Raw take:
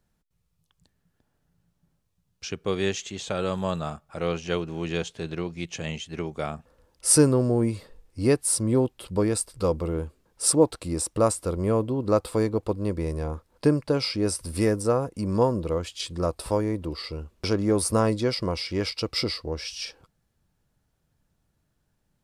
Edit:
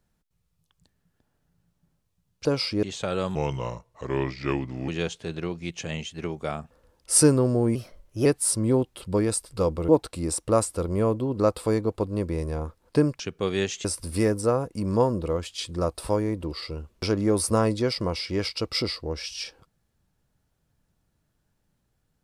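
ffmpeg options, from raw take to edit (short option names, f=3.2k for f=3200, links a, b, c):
-filter_complex "[0:a]asplit=10[a][b][c][d][e][f][g][h][i][j];[a]atrim=end=2.452[k];[b]atrim=start=13.878:end=14.262[l];[c]atrim=start=3.098:end=3.624[m];[d]atrim=start=3.62:end=4.83,asetpts=PTS-STARTPTS,asetrate=34839,aresample=44100[n];[e]atrim=start=4.826:end=7.704[o];[f]atrim=start=7.7:end=8.29,asetpts=PTS-STARTPTS,asetrate=51597,aresample=44100,atrim=end_sample=22238,asetpts=PTS-STARTPTS[p];[g]atrim=start=8.286:end=9.922[q];[h]atrim=start=10.568:end=13.882[r];[i]atrim=start=2.448:end=3.102[s];[j]atrim=start=14.258[t];[k][l]acrossfade=d=0.004:c1=hsin:c2=hsin[u];[u][m]acrossfade=d=0.004:c1=hsin:c2=hsin[v];[v][n]acrossfade=d=0.004:c1=hsin:c2=hsin[w];[w][o]acrossfade=d=0.004:c1=hsin:c2=hsin[x];[x][p]acrossfade=d=0.004:c1=hsin:c2=hsin[y];[y][q]acrossfade=d=0.004:c1=hsin:c2=hsin[z];[z][r]acrossfade=d=0.004:c1=hsin:c2=hsin[aa];[aa][s]acrossfade=d=0.004:c1=hsin:c2=hsin[ab];[ab][t]acrossfade=d=0.004:c1=hsin:c2=hsin"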